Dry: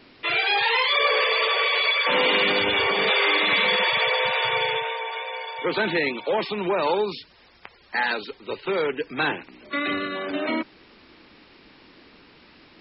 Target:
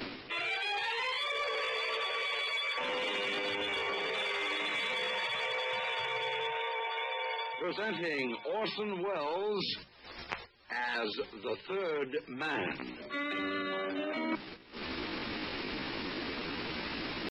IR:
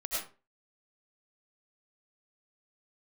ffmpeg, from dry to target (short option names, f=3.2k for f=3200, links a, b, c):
-filter_complex "[0:a]asplit=2[a][b];[b]acompressor=mode=upward:threshold=-25dB:ratio=2.5,volume=1.5dB[c];[a][c]amix=inputs=2:normalize=0,agate=range=-15dB:threshold=-37dB:ratio=16:detection=peak,asoftclip=type=tanh:threshold=-8dB,bandreject=f=50:t=h:w=6,bandreject=f=100:t=h:w=6,bandreject=f=150:t=h:w=6,bandreject=f=200:t=h:w=6,areverse,acompressor=threshold=-31dB:ratio=10,areverse,atempo=0.74,volume=-1.5dB"